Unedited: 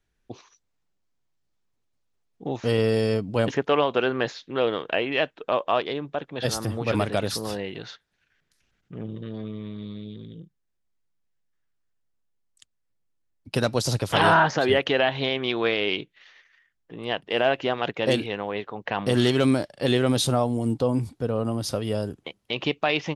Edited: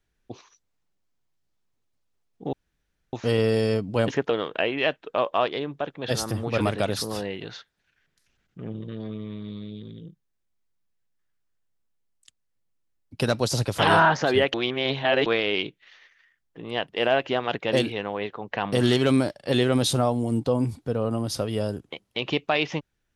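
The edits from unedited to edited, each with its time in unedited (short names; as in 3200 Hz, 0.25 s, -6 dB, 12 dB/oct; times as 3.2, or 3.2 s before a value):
2.53 insert room tone 0.60 s
3.7–4.64 cut
14.88–15.6 reverse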